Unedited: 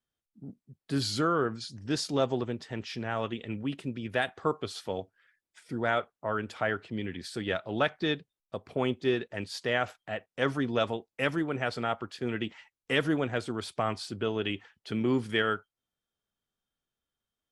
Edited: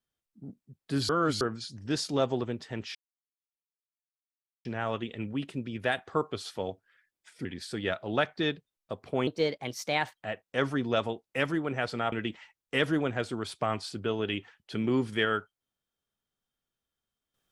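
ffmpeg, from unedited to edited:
-filter_complex "[0:a]asplit=8[a][b][c][d][e][f][g][h];[a]atrim=end=1.092[i];[b]atrim=start=1.088:end=1.412,asetpts=PTS-STARTPTS,areverse[j];[c]atrim=start=1.408:end=2.95,asetpts=PTS-STARTPTS,afade=t=out:st=1.538:d=0.004:c=hsin,apad=pad_dur=1.7[k];[d]atrim=start=2.95:end=5.752,asetpts=PTS-STARTPTS,afade=t=in:d=0.004:c=hsin[l];[e]atrim=start=7.078:end=8.904[m];[f]atrim=start=8.9:end=10.01,asetpts=PTS-STARTPTS,asetrate=54243,aresample=44100[n];[g]atrim=start=10.006:end=11.962[o];[h]atrim=start=12.288[p];[i][j]acrossfade=d=0.004:c1=hsin:c2=hsin[q];[k][l]concat=n=2:v=0:a=1[r];[q][r]acrossfade=d=0.004:c1=hsin:c2=hsin[s];[s][m]acrossfade=d=0.004:c1=hsin:c2=hsin[t];[t][n]acrossfade=d=0.004:c1=hsin:c2=hsin[u];[u][o]acrossfade=d=0.004:c1=hsin:c2=hsin[v];[v][p]acrossfade=d=0.004:c1=hsin:c2=hsin"

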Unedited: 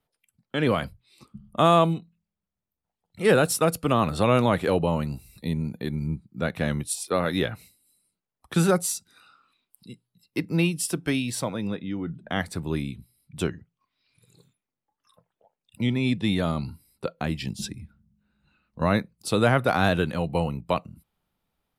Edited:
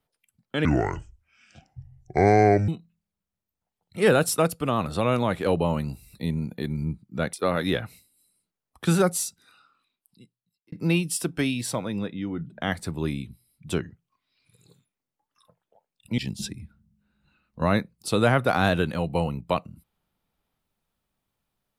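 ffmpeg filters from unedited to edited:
-filter_complex "[0:a]asplit=8[a][b][c][d][e][f][g][h];[a]atrim=end=0.654[i];[b]atrim=start=0.65:end=1.91,asetpts=PTS-STARTPTS,asetrate=27342,aresample=44100[j];[c]atrim=start=1.906:end=3.732[k];[d]atrim=start=3.728:end=4.692,asetpts=PTS-STARTPTS,volume=-3dB[l];[e]atrim=start=4.688:end=6.562[m];[f]atrim=start=7.018:end=10.41,asetpts=PTS-STARTPTS,afade=t=out:st=1.872:d=1.52[n];[g]atrim=start=10.41:end=15.872,asetpts=PTS-STARTPTS,afade=t=in:d=0.004:c=hsin[o];[h]atrim=start=17.378[p];[i][j]acrossfade=d=0.004:c1=hsin:c2=hsin[q];[q][k]acrossfade=d=0.004:c1=hsin:c2=hsin[r];[r][l]acrossfade=d=0.004:c1=hsin:c2=hsin[s];[s][m]acrossfade=d=0.004:c1=hsin:c2=hsin[t];[n][o]concat=n=2:v=0:a=1[u];[t][u]acrossfade=d=0.004:c1=hsin:c2=hsin[v];[v][p]acrossfade=d=0.004:c1=hsin:c2=hsin"

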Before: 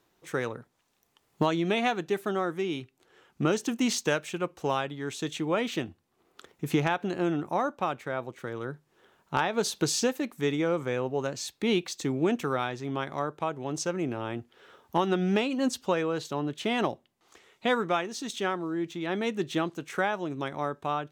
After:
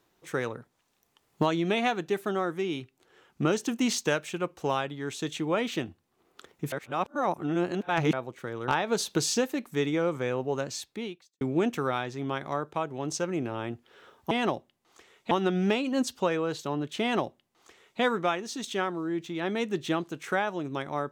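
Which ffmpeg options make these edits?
-filter_complex "[0:a]asplit=7[a][b][c][d][e][f][g];[a]atrim=end=6.722[h];[b]atrim=start=6.718:end=8.132,asetpts=PTS-STARTPTS,areverse[i];[c]atrim=start=8.128:end=8.682[j];[d]atrim=start=9.338:end=12.07,asetpts=PTS-STARTPTS,afade=t=out:st=2.072:d=0.66:c=qua[k];[e]atrim=start=12.07:end=14.972,asetpts=PTS-STARTPTS,afade=t=in:d=0.004:c=hsin[l];[f]atrim=start=16.668:end=17.672[m];[g]atrim=start=14.968[n];[h][i]acrossfade=d=0.004:c1=hsin:c2=hsin[o];[o][j]acrossfade=d=0.004:c1=hsin:c2=hsin[p];[k][l]concat=n=2:v=0:a=1[q];[p][q]acrossfade=d=0.004:c1=hsin:c2=hsin[r];[r][m]acrossfade=d=0.004:c1=hsin:c2=hsin[s];[s][n]acrossfade=d=0.004:c1=hsin:c2=hsin"

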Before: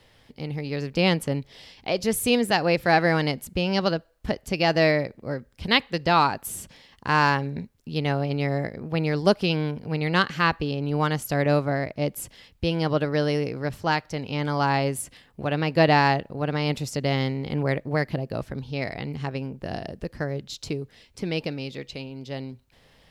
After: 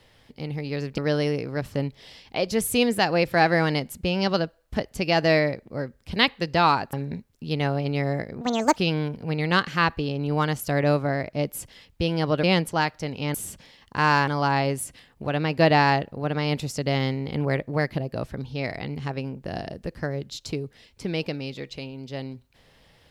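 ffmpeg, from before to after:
-filter_complex "[0:a]asplit=10[a][b][c][d][e][f][g][h][i][j];[a]atrim=end=0.982[k];[b]atrim=start=13.058:end=13.822[l];[c]atrim=start=1.258:end=6.452[m];[d]atrim=start=7.378:end=8.864[n];[e]atrim=start=8.86:end=9.39,asetpts=PTS-STARTPTS,asetrate=66150,aresample=44100[o];[f]atrim=start=9.386:end=13.062[p];[g]atrim=start=0.978:end=1.262[q];[h]atrim=start=13.818:end=14.452[r];[i]atrim=start=6.448:end=7.382[s];[j]atrim=start=14.448[t];[k][l]acrossfade=d=0.004:c1=hsin:c2=hsin[u];[u][m]acrossfade=d=0.004:c1=hsin:c2=hsin[v];[v][n]acrossfade=d=0.004:c1=hsin:c2=hsin[w];[w][o]acrossfade=d=0.004:c1=hsin:c2=hsin[x];[x][p]acrossfade=d=0.004:c1=hsin:c2=hsin[y];[y][q]acrossfade=d=0.004:c1=hsin:c2=hsin[z];[z][r]acrossfade=d=0.004:c1=hsin:c2=hsin[aa];[aa][s]acrossfade=d=0.004:c1=hsin:c2=hsin[ab];[ab][t]acrossfade=d=0.004:c1=hsin:c2=hsin"

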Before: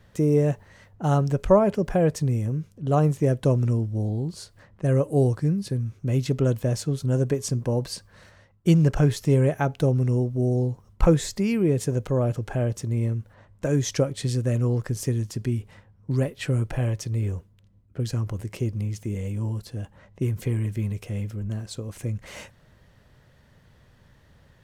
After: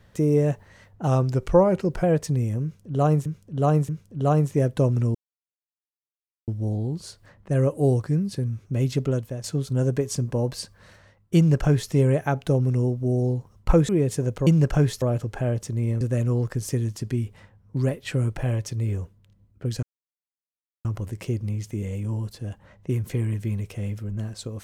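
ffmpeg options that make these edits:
-filter_complex "[0:a]asplit=12[a][b][c][d][e][f][g][h][i][j][k][l];[a]atrim=end=1.074[m];[b]atrim=start=1.07:end=1.96,asetpts=PTS-STARTPTS,asetrate=40572,aresample=44100[n];[c]atrim=start=1.956:end=3.182[o];[d]atrim=start=2.548:end=3.182[p];[e]atrim=start=2.548:end=3.81,asetpts=PTS-STARTPTS,afade=t=out:st=1.258:d=0.004:c=hsin,apad=pad_dur=1.33[q];[f]atrim=start=3.81:end=6.77,asetpts=PTS-STARTPTS,afade=t=in:d=0.004:c=hsin,afade=t=out:st=2.5:d=0.46:silence=0.237137[r];[g]atrim=start=6.77:end=11.222,asetpts=PTS-STARTPTS,afade=t=in:d=0.004:c=hsin:silence=0.237137[s];[h]atrim=start=11.578:end=12.162[t];[i]atrim=start=8.698:end=9.252[u];[j]atrim=start=12.158:end=13.152[v];[k]atrim=start=14.348:end=18.17,asetpts=PTS-STARTPTS,afade=t=out:st=3.818:d=0.004:c=hsin,apad=pad_dur=1.02[w];[l]atrim=start=18.17,asetpts=PTS-STARTPTS,afade=t=in:d=0.004:c=hsin[x];[m][n]acrossfade=d=0.004:c1=hsin:c2=hsin[y];[y][o]acrossfade=d=0.004:c1=hsin:c2=hsin[z];[z][p]acrossfade=d=0.004:c1=hsin:c2=hsin[aa];[q][r][s]concat=n=3:v=0:a=1[ab];[aa][ab]acrossfade=d=0.004:c1=hsin:c2=hsin[ac];[ac][t]acrossfade=d=0.004:c1=hsin:c2=hsin[ad];[ad][u]acrossfade=d=0.004:c1=hsin:c2=hsin[ae];[ae][v]acrossfade=d=0.004:c1=hsin:c2=hsin[af];[w][x]concat=n=2:v=0:a=1[ag];[af][ag]acrossfade=d=0.004:c1=hsin:c2=hsin"

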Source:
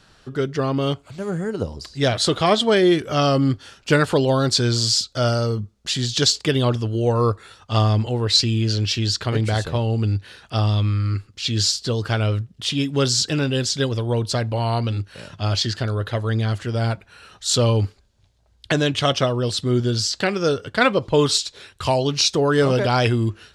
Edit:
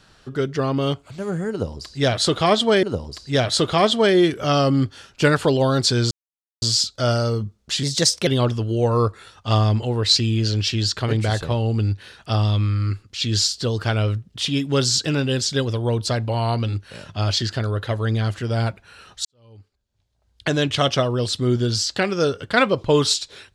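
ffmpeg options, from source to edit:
-filter_complex "[0:a]asplit=6[a][b][c][d][e][f];[a]atrim=end=2.832[g];[b]atrim=start=1.508:end=4.79,asetpts=PTS-STARTPTS,afade=t=out:st=3.278:d=0.004:c=hsin,apad=pad_dur=0.51[h];[c]atrim=start=4.79:end=6.004,asetpts=PTS-STARTPTS,afade=t=in:d=0.004:c=hsin[i];[d]atrim=start=6:end=6.51,asetpts=PTS-STARTPTS,asetrate=51156,aresample=44100[j];[e]atrim=start=6.506:end=17.49,asetpts=PTS-STARTPTS,afade=t=out:st=10.98:d=0.004:c=hsin[k];[f]atrim=start=17.49,asetpts=PTS-STARTPTS,afade=t=in:d=1.39:c=qua[l];[h][i]concat=n=2:v=0:a=1[m];[g][m]acrossfade=d=0.004:c1=hsin:c2=hsin[n];[n][j]acrossfade=d=0.004:c1=hsin:c2=hsin[o];[k][l]concat=n=2:v=0:a=1[p];[o][p]acrossfade=d=0.004:c1=hsin:c2=hsin"

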